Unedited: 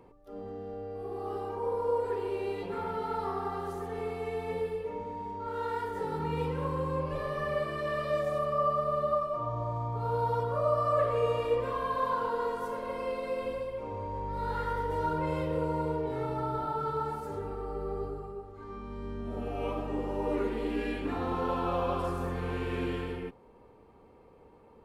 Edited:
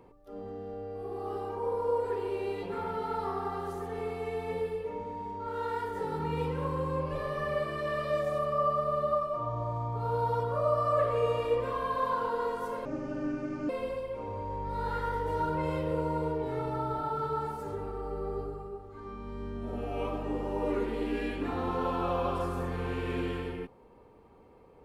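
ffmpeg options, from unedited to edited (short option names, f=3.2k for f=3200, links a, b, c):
-filter_complex "[0:a]asplit=3[a][b][c];[a]atrim=end=12.854[d];[b]atrim=start=12.85:end=13.33,asetpts=PTS-STARTPTS,asetrate=25137,aresample=44100[e];[c]atrim=start=13.326[f];[d][e]acrossfade=d=0.004:c1=hsin:c2=hsin[g];[g][f]acrossfade=d=0.004:c1=hsin:c2=hsin"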